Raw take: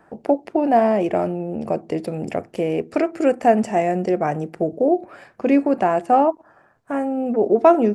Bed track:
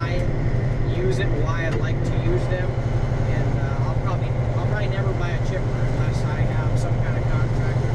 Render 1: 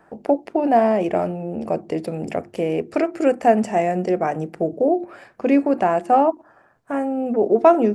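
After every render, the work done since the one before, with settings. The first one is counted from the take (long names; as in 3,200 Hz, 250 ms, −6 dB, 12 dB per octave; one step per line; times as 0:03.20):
mains-hum notches 50/100/150/200/250/300/350 Hz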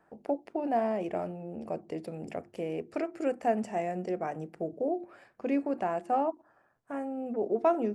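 level −12.5 dB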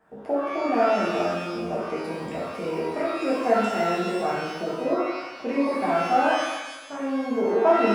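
reverb with rising layers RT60 1.1 s, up +12 semitones, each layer −8 dB, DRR −7 dB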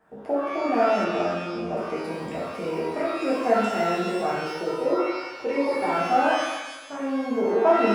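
0:01.04–0:01.77: high-frequency loss of the air 57 metres
0:04.46–0:05.98: comb filter 2.2 ms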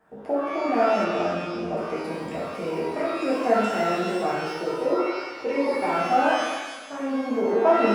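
feedback echo with a swinging delay time 96 ms, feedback 62%, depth 200 cents, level −14.5 dB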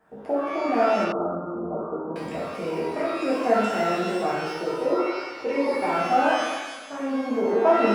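0:01.12–0:02.16: Chebyshev low-pass with heavy ripple 1,400 Hz, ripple 3 dB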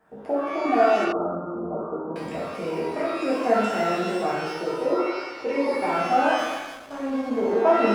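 0:00.65–0:01.17: comb filter 2.7 ms
0:06.38–0:07.61: slack as between gear wheels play −35.5 dBFS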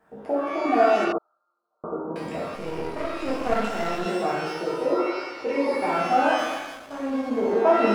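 0:01.18–0:01.84: four-pole ladder band-pass 4,400 Hz, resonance 80%
0:02.55–0:04.06: gain on one half-wave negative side −12 dB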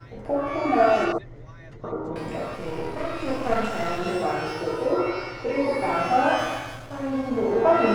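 mix in bed track −21.5 dB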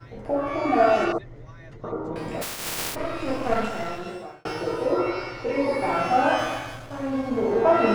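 0:02.41–0:02.94: compressing power law on the bin magnitudes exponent 0.18
0:03.57–0:04.45: fade out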